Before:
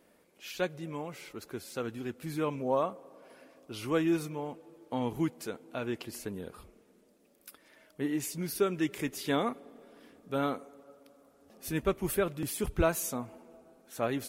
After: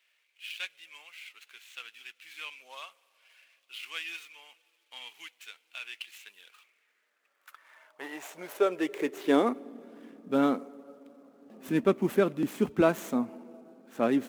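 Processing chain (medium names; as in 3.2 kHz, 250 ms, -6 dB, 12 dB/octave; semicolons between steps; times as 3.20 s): median filter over 9 samples; high-pass sweep 2.7 kHz -> 230 Hz, 6.48–9.81 s; trim +2.5 dB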